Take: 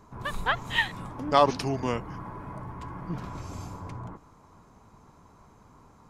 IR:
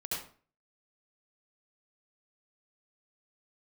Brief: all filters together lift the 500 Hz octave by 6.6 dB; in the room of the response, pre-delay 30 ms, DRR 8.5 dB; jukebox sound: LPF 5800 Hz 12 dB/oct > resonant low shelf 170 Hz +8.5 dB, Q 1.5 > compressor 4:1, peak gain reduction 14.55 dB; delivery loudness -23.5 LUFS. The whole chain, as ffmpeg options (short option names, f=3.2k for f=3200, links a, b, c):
-filter_complex "[0:a]equalizer=f=500:t=o:g=9,asplit=2[a][b];[1:a]atrim=start_sample=2205,adelay=30[c];[b][c]afir=irnorm=-1:irlink=0,volume=-11dB[d];[a][d]amix=inputs=2:normalize=0,lowpass=5.8k,lowshelf=f=170:t=q:w=1.5:g=8.5,acompressor=threshold=-27dB:ratio=4,volume=9dB"